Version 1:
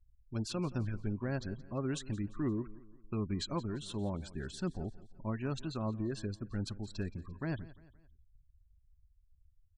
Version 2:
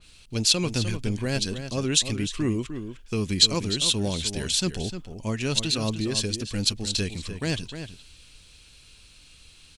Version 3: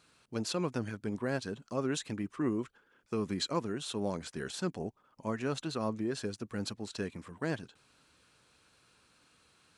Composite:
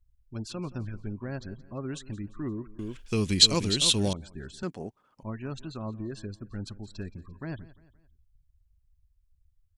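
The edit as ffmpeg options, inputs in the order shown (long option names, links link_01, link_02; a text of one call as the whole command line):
ffmpeg -i take0.wav -i take1.wav -i take2.wav -filter_complex "[0:a]asplit=3[link_01][link_02][link_03];[link_01]atrim=end=2.792[link_04];[1:a]atrim=start=2.788:end=4.132[link_05];[link_02]atrim=start=4.128:end=4.632[link_06];[2:a]atrim=start=4.628:end=5.232[link_07];[link_03]atrim=start=5.228[link_08];[link_04][link_05]acrossfade=duration=0.004:curve1=hsin:curve2=hsin[link_09];[link_09][link_06]acrossfade=duration=0.004:curve1=hsin:curve2=hsin[link_10];[link_10][link_07]acrossfade=duration=0.004:curve1=hsin:curve2=hsin[link_11];[link_11][link_08]acrossfade=duration=0.004:curve1=hsin:curve2=hsin" out.wav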